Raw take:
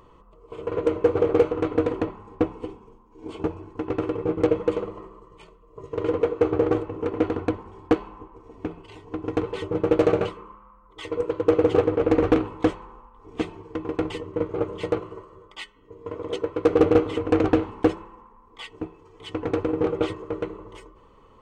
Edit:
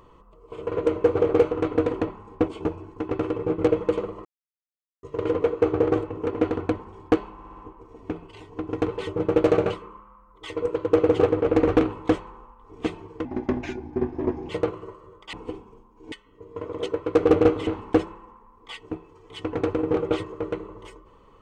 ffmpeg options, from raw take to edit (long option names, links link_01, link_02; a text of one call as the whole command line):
ffmpeg -i in.wav -filter_complex "[0:a]asplit=13[link_01][link_02][link_03][link_04][link_05][link_06][link_07][link_08][link_09][link_10][link_11][link_12][link_13];[link_01]atrim=end=2.482[link_14];[link_02]atrim=start=3.268:end=5.04,asetpts=PTS-STARTPTS,afade=type=out:start_time=1.768:duration=0.004:curve=hsin[link_15];[link_03]atrim=start=5.04:end=5.82,asetpts=PTS-STARTPTS,volume=0[link_16];[link_04]atrim=start=5.82:end=8.182,asetpts=PTS-STARTPTS,afade=type=in:duration=0.004:curve=hsin[link_17];[link_05]atrim=start=8.118:end=8.182[link_18];[link_06]atrim=start=8.118:end=8.182[link_19];[link_07]atrim=start=8.118:end=8.182[link_20];[link_08]atrim=start=8.118:end=13.804[link_21];[link_09]atrim=start=13.8:end=14.78,asetpts=PTS-STARTPTS,asetrate=34839,aresample=44100,atrim=end_sample=54706,asetpts=PTS-STARTPTS[link_22];[link_10]atrim=start=14.776:end=15.622[link_23];[link_11]atrim=start=2.478:end=3.272[link_24];[link_12]atrim=start=15.618:end=17.172[link_25];[link_13]atrim=start=17.568[link_26];[link_15][link_16][link_17]concat=n=3:v=0:a=1[link_27];[link_14][link_27]acrossfade=duration=0.004:curve1=hsin:curve2=hsin[link_28];[link_28][link_18]acrossfade=duration=0.004:curve1=hsin:curve2=hsin[link_29];[link_29][link_19]acrossfade=duration=0.004:curve1=hsin:curve2=hsin[link_30];[link_30][link_20]acrossfade=duration=0.004:curve1=hsin:curve2=hsin[link_31];[link_31][link_21]acrossfade=duration=0.004:curve1=hsin:curve2=hsin[link_32];[link_32][link_22]acrossfade=duration=0.004:curve1=hsin:curve2=hsin[link_33];[link_33][link_23]acrossfade=duration=0.004:curve1=hsin:curve2=hsin[link_34];[link_34][link_24]acrossfade=duration=0.004:curve1=hsin:curve2=hsin[link_35];[link_35][link_25]acrossfade=duration=0.004:curve1=hsin:curve2=hsin[link_36];[link_36][link_26]acrossfade=duration=0.004:curve1=hsin:curve2=hsin" out.wav